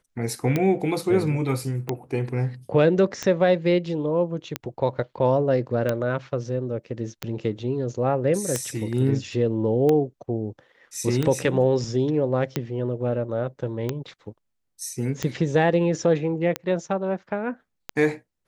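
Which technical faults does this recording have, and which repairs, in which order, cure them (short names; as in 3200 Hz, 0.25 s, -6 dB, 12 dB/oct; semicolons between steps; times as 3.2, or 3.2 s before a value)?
tick 45 rpm -10 dBFS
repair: de-click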